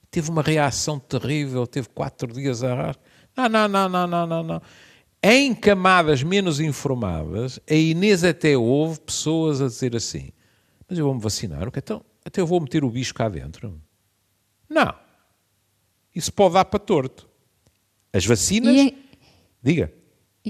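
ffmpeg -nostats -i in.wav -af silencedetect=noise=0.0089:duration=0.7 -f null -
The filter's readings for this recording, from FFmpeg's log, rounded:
silence_start: 13.80
silence_end: 14.70 | silence_duration: 0.90
silence_start: 14.98
silence_end: 16.16 | silence_duration: 1.18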